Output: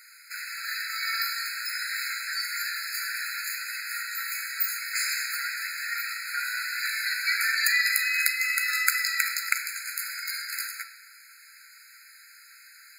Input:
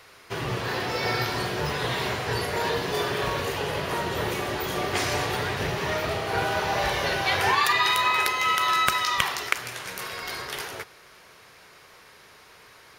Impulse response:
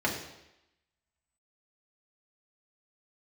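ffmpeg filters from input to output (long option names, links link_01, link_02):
-filter_complex "[0:a]asplit=2[link_01][link_02];[1:a]atrim=start_sample=2205,asetrate=31311,aresample=44100[link_03];[link_02][link_03]afir=irnorm=-1:irlink=0,volume=-12dB[link_04];[link_01][link_04]amix=inputs=2:normalize=0,crystalizer=i=4:c=0,afftfilt=real='re*eq(mod(floor(b*sr/1024/1300),2),1)':imag='im*eq(mod(floor(b*sr/1024/1300),2),1)':win_size=1024:overlap=0.75,volume=-7dB"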